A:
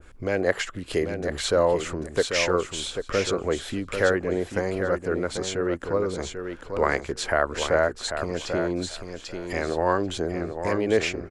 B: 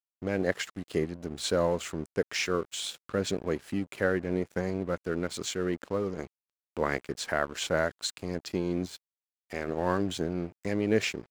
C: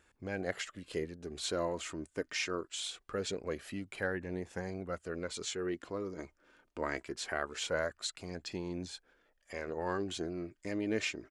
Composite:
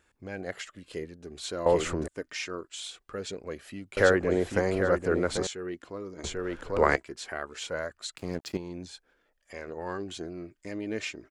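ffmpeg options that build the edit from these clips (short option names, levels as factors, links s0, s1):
-filter_complex "[0:a]asplit=3[s0][s1][s2];[2:a]asplit=5[s3][s4][s5][s6][s7];[s3]atrim=end=1.662[s8];[s0]atrim=start=1.658:end=2.082[s9];[s4]atrim=start=2.078:end=3.972[s10];[s1]atrim=start=3.968:end=5.472[s11];[s5]atrim=start=5.468:end=6.242[s12];[s2]atrim=start=6.238:end=6.962[s13];[s6]atrim=start=6.958:end=8.172[s14];[1:a]atrim=start=8.168:end=8.572[s15];[s7]atrim=start=8.568[s16];[s8][s9]acrossfade=d=0.004:c1=hsin:c2=hsin[s17];[s17][s10]acrossfade=d=0.004:c1=hsin:c2=hsin[s18];[s18][s11]acrossfade=d=0.004:c1=hsin:c2=hsin[s19];[s19][s12]acrossfade=d=0.004:c1=hsin:c2=hsin[s20];[s20][s13]acrossfade=d=0.004:c1=hsin:c2=hsin[s21];[s21][s14]acrossfade=d=0.004:c1=hsin:c2=hsin[s22];[s22][s15]acrossfade=d=0.004:c1=hsin:c2=hsin[s23];[s23][s16]acrossfade=d=0.004:c1=hsin:c2=hsin"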